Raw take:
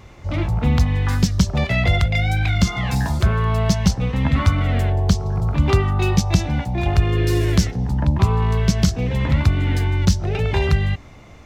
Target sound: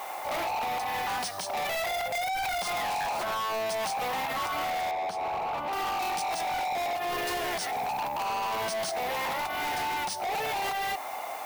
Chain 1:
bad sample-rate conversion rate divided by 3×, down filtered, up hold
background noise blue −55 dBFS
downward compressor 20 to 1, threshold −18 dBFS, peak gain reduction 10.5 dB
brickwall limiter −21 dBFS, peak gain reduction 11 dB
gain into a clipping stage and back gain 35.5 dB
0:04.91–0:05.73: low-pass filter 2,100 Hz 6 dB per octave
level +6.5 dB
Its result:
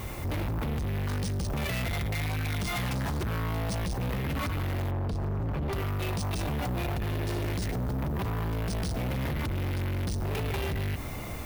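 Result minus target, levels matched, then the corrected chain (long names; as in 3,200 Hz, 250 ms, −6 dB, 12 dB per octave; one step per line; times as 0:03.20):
1,000 Hz band −10.0 dB
bad sample-rate conversion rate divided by 3×, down filtered, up hold
background noise blue −55 dBFS
downward compressor 20 to 1, threshold −18 dBFS, peak gain reduction 10.5 dB
high-pass with resonance 770 Hz, resonance Q 5
brickwall limiter −21 dBFS, peak gain reduction 14 dB
gain into a clipping stage and back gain 35.5 dB
0:04.91–0:05.73: low-pass filter 2,100 Hz 6 dB per octave
level +6.5 dB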